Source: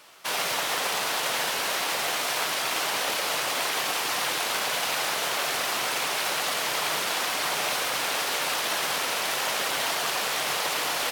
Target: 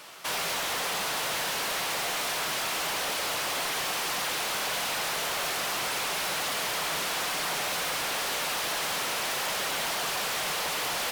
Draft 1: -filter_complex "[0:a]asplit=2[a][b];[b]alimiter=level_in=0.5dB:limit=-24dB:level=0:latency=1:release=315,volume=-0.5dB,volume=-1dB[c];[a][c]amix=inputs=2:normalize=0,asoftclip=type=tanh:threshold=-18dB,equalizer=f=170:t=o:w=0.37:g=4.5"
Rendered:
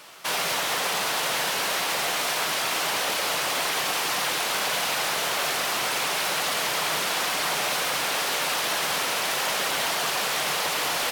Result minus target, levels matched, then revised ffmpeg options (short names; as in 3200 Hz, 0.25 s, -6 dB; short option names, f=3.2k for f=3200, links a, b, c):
soft clip: distortion -10 dB
-filter_complex "[0:a]asplit=2[a][b];[b]alimiter=level_in=0.5dB:limit=-24dB:level=0:latency=1:release=315,volume=-0.5dB,volume=-1dB[c];[a][c]amix=inputs=2:normalize=0,asoftclip=type=tanh:threshold=-27.5dB,equalizer=f=170:t=o:w=0.37:g=4.5"